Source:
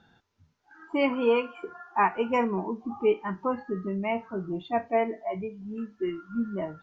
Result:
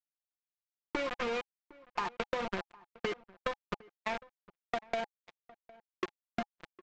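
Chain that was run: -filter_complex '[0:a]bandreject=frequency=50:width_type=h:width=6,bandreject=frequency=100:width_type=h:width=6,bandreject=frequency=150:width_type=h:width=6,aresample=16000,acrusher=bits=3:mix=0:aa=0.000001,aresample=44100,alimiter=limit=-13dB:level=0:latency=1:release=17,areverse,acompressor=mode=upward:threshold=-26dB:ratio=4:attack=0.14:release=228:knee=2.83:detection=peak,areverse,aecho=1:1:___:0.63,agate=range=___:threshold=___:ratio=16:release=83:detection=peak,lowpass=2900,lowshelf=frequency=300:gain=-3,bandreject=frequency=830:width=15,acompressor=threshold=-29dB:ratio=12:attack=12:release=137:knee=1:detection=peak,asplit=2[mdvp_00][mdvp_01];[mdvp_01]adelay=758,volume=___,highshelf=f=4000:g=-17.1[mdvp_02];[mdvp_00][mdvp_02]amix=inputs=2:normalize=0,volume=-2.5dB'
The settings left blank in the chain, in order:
5.7, -53dB, -33dB, -22dB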